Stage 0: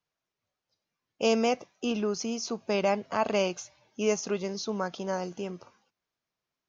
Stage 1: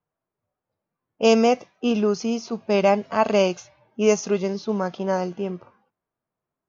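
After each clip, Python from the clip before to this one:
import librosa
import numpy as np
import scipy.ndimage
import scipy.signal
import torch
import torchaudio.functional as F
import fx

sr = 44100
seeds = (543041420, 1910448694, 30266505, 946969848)

y = fx.env_lowpass(x, sr, base_hz=1100.0, full_db=-23.5)
y = fx.hpss(y, sr, part='harmonic', gain_db=7)
y = y * 10.0 ** (1.5 / 20.0)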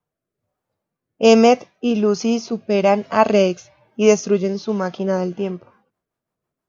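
y = fx.rotary_switch(x, sr, hz=1.2, then_hz=6.3, switch_at_s=5.19)
y = y * 10.0 ** (6.0 / 20.0)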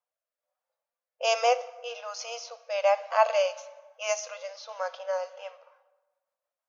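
y = fx.brickwall_highpass(x, sr, low_hz=480.0)
y = fx.rev_plate(y, sr, seeds[0], rt60_s=1.3, hf_ratio=0.6, predelay_ms=0, drr_db=13.5)
y = y * 10.0 ** (-7.0 / 20.0)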